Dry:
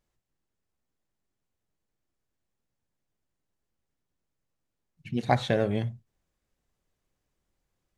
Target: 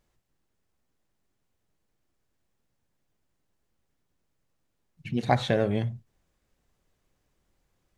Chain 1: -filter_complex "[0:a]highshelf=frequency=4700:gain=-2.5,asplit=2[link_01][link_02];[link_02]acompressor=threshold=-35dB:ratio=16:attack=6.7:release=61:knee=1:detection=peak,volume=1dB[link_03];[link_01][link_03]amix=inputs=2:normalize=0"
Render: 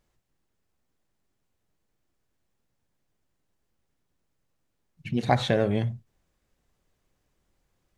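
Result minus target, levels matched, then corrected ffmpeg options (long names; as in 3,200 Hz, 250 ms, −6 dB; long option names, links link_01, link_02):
downward compressor: peak gain reduction −7.5 dB
-filter_complex "[0:a]highshelf=frequency=4700:gain=-2.5,asplit=2[link_01][link_02];[link_02]acompressor=threshold=-43dB:ratio=16:attack=6.7:release=61:knee=1:detection=peak,volume=1dB[link_03];[link_01][link_03]amix=inputs=2:normalize=0"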